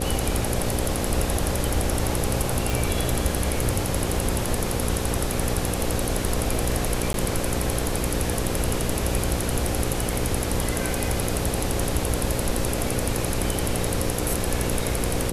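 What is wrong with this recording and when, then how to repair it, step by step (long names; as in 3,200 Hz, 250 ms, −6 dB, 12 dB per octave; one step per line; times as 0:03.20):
mains buzz 60 Hz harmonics 9 −29 dBFS
0:02.70: click
0:07.13–0:07.14: drop-out 12 ms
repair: click removal
hum removal 60 Hz, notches 9
repair the gap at 0:07.13, 12 ms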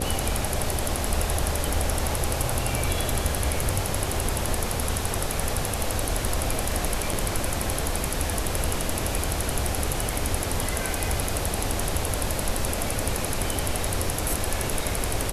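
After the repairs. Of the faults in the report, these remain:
none of them is left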